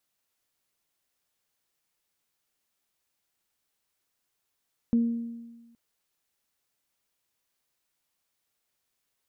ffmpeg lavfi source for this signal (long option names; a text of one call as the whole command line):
ffmpeg -f lavfi -i "aevalsrc='0.126*pow(10,-3*t/1.3)*sin(2*PI*233*t)+0.0133*pow(10,-3*t/0.91)*sin(2*PI*466*t)':duration=0.82:sample_rate=44100" out.wav